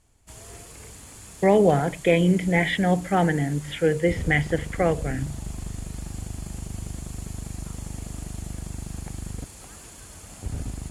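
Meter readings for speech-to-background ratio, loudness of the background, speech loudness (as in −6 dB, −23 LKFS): 15.0 dB, −37.5 LKFS, −22.5 LKFS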